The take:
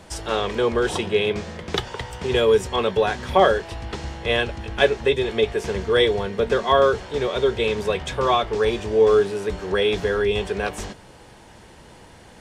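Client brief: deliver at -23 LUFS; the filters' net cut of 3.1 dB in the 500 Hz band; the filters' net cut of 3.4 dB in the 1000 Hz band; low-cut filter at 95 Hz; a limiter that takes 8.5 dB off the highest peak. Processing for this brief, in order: HPF 95 Hz; bell 500 Hz -3 dB; bell 1000 Hz -3.5 dB; gain +2.5 dB; limiter -11 dBFS

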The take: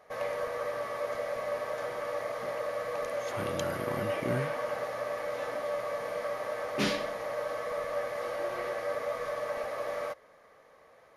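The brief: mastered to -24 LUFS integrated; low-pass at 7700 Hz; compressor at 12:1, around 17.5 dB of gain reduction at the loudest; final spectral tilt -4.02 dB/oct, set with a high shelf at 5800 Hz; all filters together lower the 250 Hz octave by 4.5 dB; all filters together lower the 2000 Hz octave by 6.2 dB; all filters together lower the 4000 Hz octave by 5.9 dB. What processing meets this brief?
LPF 7700 Hz; bell 250 Hz -6 dB; bell 2000 Hz -6.5 dB; bell 4000 Hz -4 dB; high shelf 5800 Hz -3 dB; compressor 12:1, threshold -47 dBFS; gain +26.5 dB

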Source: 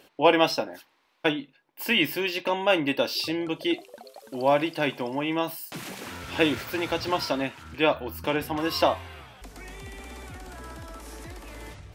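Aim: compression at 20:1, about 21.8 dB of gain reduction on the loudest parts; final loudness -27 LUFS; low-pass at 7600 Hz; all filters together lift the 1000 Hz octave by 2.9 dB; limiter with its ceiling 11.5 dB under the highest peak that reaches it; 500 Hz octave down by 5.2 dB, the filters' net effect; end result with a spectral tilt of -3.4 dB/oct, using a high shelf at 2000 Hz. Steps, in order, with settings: LPF 7600 Hz; bell 500 Hz -9 dB; bell 1000 Hz +5.5 dB; high shelf 2000 Hz +4.5 dB; compressor 20:1, threshold -35 dBFS; gain +14 dB; limiter -15 dBFS

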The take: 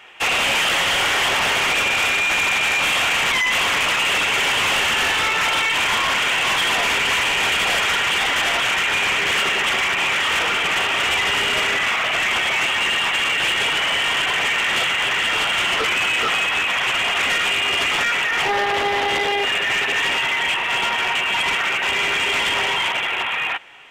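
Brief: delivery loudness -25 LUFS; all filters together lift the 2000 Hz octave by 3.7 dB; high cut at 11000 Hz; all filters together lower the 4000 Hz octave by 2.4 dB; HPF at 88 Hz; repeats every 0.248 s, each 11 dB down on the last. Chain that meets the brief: HPF 88 Hz; LPF 11000 Hz; bell 2000 Hz +7 dB; bell 4000 Hz -8.5 dB; feedback echo 0.248 s, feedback 28%, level -11 dB; gain -10 dB

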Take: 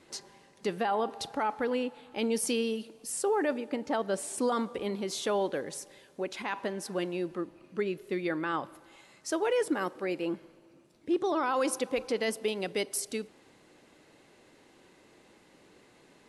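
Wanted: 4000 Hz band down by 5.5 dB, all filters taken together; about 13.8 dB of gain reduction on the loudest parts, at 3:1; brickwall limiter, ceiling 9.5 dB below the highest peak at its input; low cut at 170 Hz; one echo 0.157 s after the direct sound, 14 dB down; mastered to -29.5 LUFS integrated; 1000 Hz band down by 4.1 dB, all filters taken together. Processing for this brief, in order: HPF 170 Hz; bell 1000 Hz -5 dB; bell 4000 Hz -7.5 dB; compressor 3:1, threshold -45 dBFS; limiter -40 dBFS; echo 0.157 s -14 dB; gain +20 dB

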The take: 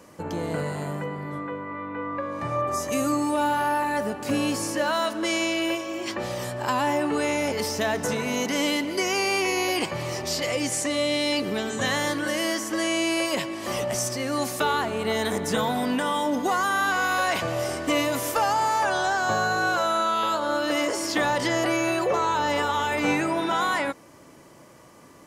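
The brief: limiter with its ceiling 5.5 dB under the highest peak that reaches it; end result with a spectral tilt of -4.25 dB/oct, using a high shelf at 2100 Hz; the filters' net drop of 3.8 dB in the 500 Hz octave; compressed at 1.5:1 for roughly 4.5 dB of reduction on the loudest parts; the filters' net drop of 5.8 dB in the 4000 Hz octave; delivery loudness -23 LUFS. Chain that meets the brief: bell 500 Hz -4.5 dB; high shelf 2100 Hz -4.5 dB; bell 4000 Hz -3.5 dB; compressor 1.5:1, threshold -35 dBFS; gain +10.5 dB; limiter -14.5 dBFS

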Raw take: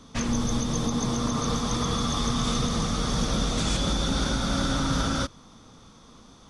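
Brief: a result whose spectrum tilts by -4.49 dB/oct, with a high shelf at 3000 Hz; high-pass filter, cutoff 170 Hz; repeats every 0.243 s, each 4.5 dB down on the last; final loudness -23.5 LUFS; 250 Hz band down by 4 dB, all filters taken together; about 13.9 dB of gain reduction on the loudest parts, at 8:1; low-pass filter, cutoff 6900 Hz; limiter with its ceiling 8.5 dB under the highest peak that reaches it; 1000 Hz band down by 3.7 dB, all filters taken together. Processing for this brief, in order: HPF 170 Hz; LPF 6900 Hz; bell 250 Hz -3 dB; bell 1000 Hz -3.5 dB; high shelf 3000 Hz -8 dB; compressor 8:1, threshold -42 dBFS; limiter -39.5 dBFS; feedback echo 0.243 s, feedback 60%, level -4.5 dB; gain +23.5 dB

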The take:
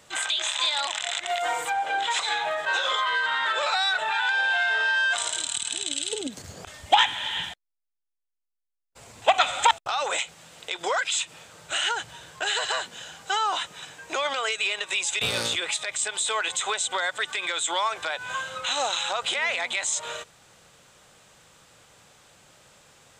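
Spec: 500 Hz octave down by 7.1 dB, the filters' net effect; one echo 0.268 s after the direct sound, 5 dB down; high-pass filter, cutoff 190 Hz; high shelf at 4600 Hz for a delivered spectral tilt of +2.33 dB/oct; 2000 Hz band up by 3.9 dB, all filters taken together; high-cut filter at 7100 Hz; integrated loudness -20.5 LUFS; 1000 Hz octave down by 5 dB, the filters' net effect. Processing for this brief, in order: HPF 190 Hz; LPF 7100 Hz; bell 500 Hz -7.5 dB; bell 1000 Hz -6.5 dB; bell 2000 Hz +7.5 dB; high shelf 4600 Hz +4.5 dB; echo 0.268 s -5 dB; gain +1.5 dB

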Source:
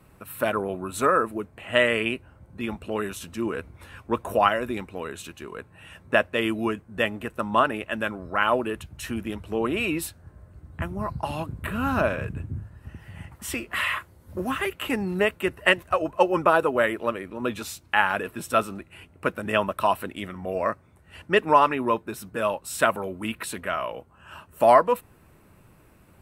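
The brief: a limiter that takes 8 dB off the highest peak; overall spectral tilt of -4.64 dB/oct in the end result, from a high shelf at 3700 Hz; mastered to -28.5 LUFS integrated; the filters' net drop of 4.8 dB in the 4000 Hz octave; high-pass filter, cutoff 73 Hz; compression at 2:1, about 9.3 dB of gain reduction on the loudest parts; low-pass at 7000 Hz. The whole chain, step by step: HPF 73 Hz; LPF 7000 Hz; high shelf 3700 Hz -6.5 dB; bell 4000 Hz -3.5 dB; compressor 2:1, threshold -29 dBFS; gain +5 dB; limiter -13.5 dBFS

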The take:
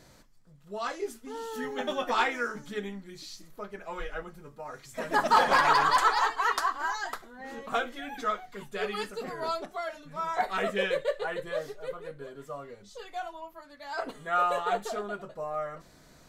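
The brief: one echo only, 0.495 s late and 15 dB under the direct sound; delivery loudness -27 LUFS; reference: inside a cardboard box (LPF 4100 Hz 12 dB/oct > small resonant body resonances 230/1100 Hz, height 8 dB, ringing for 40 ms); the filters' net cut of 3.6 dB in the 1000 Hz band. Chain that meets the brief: LPF 4100 Hz 12 dB/oct; bell 1000 Hz -4.5 dB; echo 0.495 s -15 dB; small resonant body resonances 230/1100 Hz, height 8 dB, ringing for 40 ms; gain +4.5 dB

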